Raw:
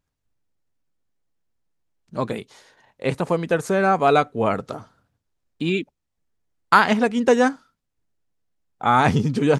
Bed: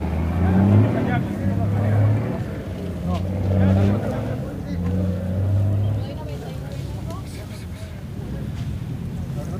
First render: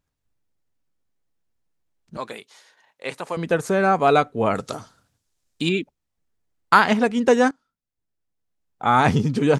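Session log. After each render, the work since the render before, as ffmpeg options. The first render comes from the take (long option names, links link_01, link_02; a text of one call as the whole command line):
ffmpeg -i in.wav -filter_complex "[0:a]asettb=1/sr,asplit=3[link_01][link_02][link_03];[link_01]atrim=end=2.174[link_04];[link_02]atrim=start=2.17:end=3.37,asetpts=PTS-STARTPTS,afade=type=in:duration=0.004:curve=qsin,afade=type=out:start_time=1.196:duration=0.004:curve=qsin,highpass=frequency=1100:poles=1[link_05];[link_03]atrim=start=3.366[link_06];[link_04][link_05]acrossfade=duration=0.004:curve1=hsin:curve2=qsin[link_07];[link_07][link_06]acrossfade=duration=0.004:curve1=qsin:curve2=hsin,asettb=1/sr,asplit=3[link_08][link_09][link_10];[link_08]atrim=end=4.554[link_11];[link_09]atrim=start=4.55:end=5.69,asetpts=PTS-STARTPTS,afade=type=in:duration=0.004:curve=qsin,afade=type=out:start_time=1.136:duration=0.004:curve=qsin,equalizer=frequency=7700:width=0.4:gain=13[link_12];[link_10]atrim=start=5.686[link_13];[link_11][link_12]acrossfade=duration=0.004:curve1=hsin:curve2=qsin[link_14];[link_14][link_13]acrossfade=duration=0.004:curve1=qsin:curve2=hsin,asplit=2[link_15][link_16];[link_15]atrim=end=7.51,asetpts=PTS-STARTPTS,afade=type=out:start_time=7.506:duration=0.004:curve=hsin:silence=0.1[link_17];[link_16]atrim=start=7.51,asetpts=PTS-STARTPTS,afade=type=in:duration=1.47:silence=0.1[link_18];[link_17][link_18]concat=n=2:v=0:a=1" out.wav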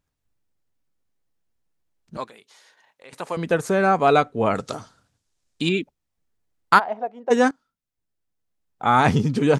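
ffmpeg -i in.wav -filter_complex "[0:a]asettb=1/sr,asplit=3[link_01][link_02][link_03];[link_01]atrim=end=2.244[link_04];[link_02]atrim=start=2.24:end=3.13,asetpts=PTS-STARTPTS,afade=type=in:duration=0.004:curve=qsin,afade=type=out:start_time=0.886:duration=0.004:curve=qsin,acompressor=threshold=-49dB:ratio=2.5:attack=3.2:release=140:knee=1:detection=peak[link_05];[link_03]atrim=start=3.126[link_06];[link_04][link_05]acrossfade=duration=0.004:curve1=hsin:curve2=qsin[link_07];[link_07][link_06]acrossfade=duration=0.004:curve1=qsin:curve2=hsin,asettb=1/sr,asplit=3[link_08][link_09][link_10];[link_08]atrim=end=3.924[link_11];[link_09]atrim=start=3.92:end=5.75,asetpts=PTS-STARTPTS,afade=type=in:duration=0.004:curve=qsin,afade=type=out:start_time=1.826:duration=0.004:curve=qsin,lowpass=9900[link_12];[link_10]atrim=start=5.746[link_13];[link_11][link_12]acrossfade=duration=0.004:curve1=hsin:curve2=qsin[link_14];[link_14][link_13]acrossfade=duration=0.004:curve1=qsin:curve2=hsin,asplit=3[link_15][link_16][link_17];[link_15]afade=type=out:start_time=6.78:duration=0.02[link_18];[link_16]bandpass=frequency=700:width_type=q:width=4.6,afade=type=in:start_time=6.78:duration=0.02,afade=type=out:start_time=7.3:duration=0.02[link_19];[link_17]afade=type=in:start_time=7.3:duration=0.02[link_20];[link_18][link_19][link_20]amix=inputs=3:normalize=0" out.wav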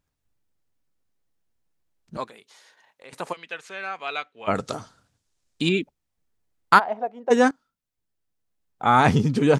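ffmpeg -i in.wav -filter_complex "[0:a]asplit=3[link_01][link_02][link_03];[link_01]afade=type=out:start_time=3.32:duration=0.02[link_04];[link_02]bandpass=frequency=2800:width_type=q:width=1.9,afade=type=in:start_time=3.32:duration=0.02,afade=type=out:start_time=4.47:duration=0.02[link_05];[link_03]afade=type=in:start_time=4.47:duration=0.02[link_06];[link_04][link_05][link_06]amix=inputs=3:normalize=0" out.wav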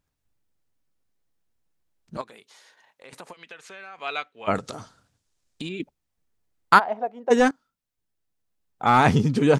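ffmpeg -i in.wav -filter_complex "[0:a]asettb=1/sr,asplit=3[link_01][link_02][link_03];[link_01]atrim=end=2.214[link_04];[link_02]atrim=start=2.21:end=3.98,asetpts=PTS-STARTPTS,afade=type=in:duration=0.004:curve=qsin,afade=type=out:start_time=1.766:duration=0.004:curve=qsin,acompressor=threshold=-39dB:ratio=4:attack=3.2:release=140:knee=1:detection=peak[link_05];[link_03]atrim=start=3.976[link_06];[link_04][link_05]acrossfade=duration=0.004:curve1=hsin:curve2=qsin[link_07];[link_07][link_06]acrossfade=duration=0.004:curve1=qsin:curve2=hsin,asettb=1/sr,asplit=3[link_08][link_09][link_10];[link_08]atrim=end=4.584[link_11];[link_09]atrim=start=4.58:end=5.8,asetpts=PTS-STARTPTS,afade=type=in:duration=0.004:curve=qsin,afade=type=out:start_time=1.216:duration=0.004:curve=qsin,acompressor=threshold=-30dB:ratio=6:attack=3.2:release=140:knee=1:detection=peak[link_12];[link_10]atrim=start=5.796[link_13];[link_11][link_12]acrossfade=duration=0.004:curve1=hsin:curve2=qsin[link_14];[link_14][link_13]acrossfade=duration=0.004:curve1=qsin:curve2=hsin,asettb=1/sr,asplit=3[link_15][link_16][link_17];[link_15]atrim=end=7.374[link_18];[link_16]atrim=start=7.37:end=9.1,asetpts=PTS-STARTPTS,afade=type=in:duration=0.004:curve=qsin,afade=type=out:start_time=1.726:duration=0.004:curve=qsin,aeval=exprs='clip(val(0),-1,0.211)':channel_layout=same[link_19];[link_17]atrim=start=9.096[link_20];[link_18][link_19]acrossfade=duration=0.004:curve1=hsin:curve2=qsin[link_21];[link_21][link_20]acrossfade=duration=0.004:curve1=qsin:curve2=hsin" out.wav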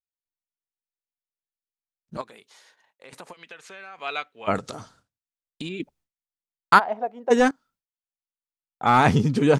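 ffmpeg -i in.wav -af "agate=range=-33dB:threshold=-53dB:ratio=3:detection=peak" out.wav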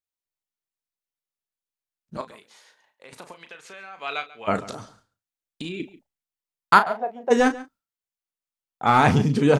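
ffmpeg -i in.wav -filter_complex "[0:a]asplit=2[link_01][link_02];[link_02]adelay=35,volume=-10dB[link_03];[link_01][link_03]amix=inputs=2:normalize=0,asplit=2[link_04][link_05];[link_05]adelay=139.9,volume=-18dB,highshelf=frequency=4000:gain=-3.15[link_06];[link_04][link_06]amix=inputs=2:normalize=0" out.wav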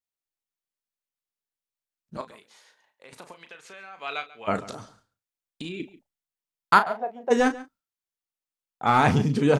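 ffmpeg -i in.wav -af "volume=-2.5dB" out.wav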